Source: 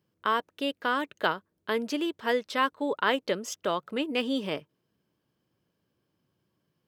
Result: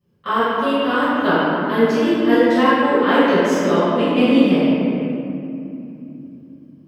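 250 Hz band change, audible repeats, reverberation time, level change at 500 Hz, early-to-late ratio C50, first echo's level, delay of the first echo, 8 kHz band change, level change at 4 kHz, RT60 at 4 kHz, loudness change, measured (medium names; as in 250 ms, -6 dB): +17.5 dB, no echo, 2.8 s, +14.0 dB, -6.0 dB, no echo, no echo, +4.5 dB, +7.0 dB, 1.6 s, +13.0 dB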